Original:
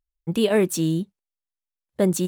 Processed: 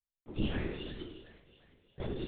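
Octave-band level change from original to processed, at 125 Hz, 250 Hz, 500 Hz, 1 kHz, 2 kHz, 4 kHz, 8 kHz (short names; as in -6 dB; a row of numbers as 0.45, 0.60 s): -13.0 dB, -16.5 dB, -20.0 dB, -14.5 dB, -12.5 dB, -12.5 dB, under -40 dB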